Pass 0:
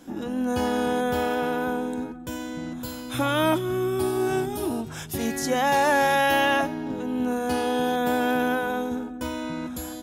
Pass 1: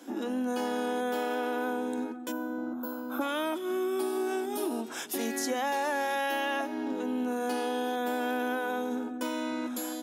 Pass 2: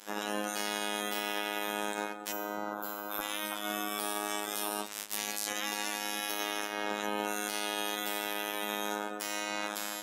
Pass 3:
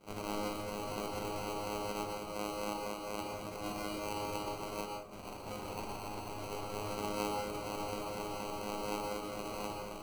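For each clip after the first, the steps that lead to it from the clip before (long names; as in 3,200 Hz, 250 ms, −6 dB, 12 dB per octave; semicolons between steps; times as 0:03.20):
Butterworth high-pass 230 Hz 48 dB per octave; gain on a spectral selection 0:02.32–0:03.21, 1,600–12,000 Hz −19 dB; downward compressor, threshold −28 dBFS, peak gain reduction 10.5 dB
ceiling on every frequency bin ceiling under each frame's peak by 26 dB; brickwall limiter −22.5 dBFS, peak gain reduction 6 dB; phases set to zero 104 Hz
variable-slope delta modulation 16 kbit/s; decimation without filtering 25×; dense smooth reverb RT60 0.56 s, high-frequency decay 0.6×, pre-delay 105 ms, DRR 2 dB; level −1.5 dB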